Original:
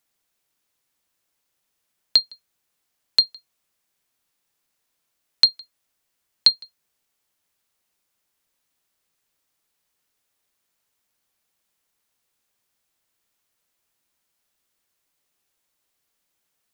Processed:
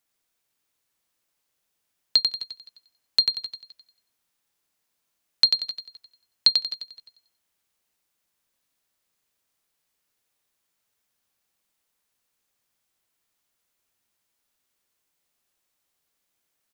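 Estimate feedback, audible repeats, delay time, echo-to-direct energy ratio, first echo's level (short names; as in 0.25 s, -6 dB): no steady repeat, 6, 92 ms, -4.0 dB, -5.0 dB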